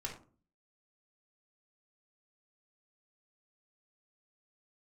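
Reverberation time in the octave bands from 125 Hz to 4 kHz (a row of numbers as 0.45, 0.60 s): 0.60, 0.60, 0.45, 0.35, 0.30, 0.25 s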